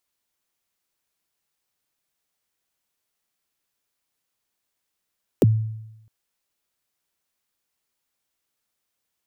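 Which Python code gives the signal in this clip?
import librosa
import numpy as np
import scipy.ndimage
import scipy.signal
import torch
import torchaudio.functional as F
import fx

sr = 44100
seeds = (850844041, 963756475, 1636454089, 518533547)

y = fx.drum_kick(sr, seeds[0], length_s=0.66, level_db=-10, start_hz=540.0, end_hz=110.0, sweep_ms=27.0, decay_s=0.92, click=True)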